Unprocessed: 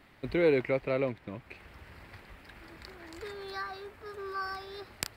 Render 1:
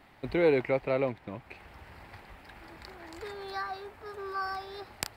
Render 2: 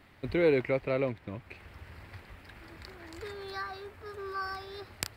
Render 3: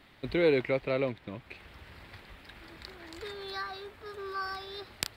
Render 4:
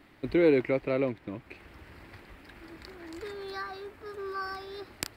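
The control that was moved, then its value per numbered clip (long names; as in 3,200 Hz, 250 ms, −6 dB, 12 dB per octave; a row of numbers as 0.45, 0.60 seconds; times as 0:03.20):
parametric band, centre frequency: 810, 90, 3,600, 310 Hertz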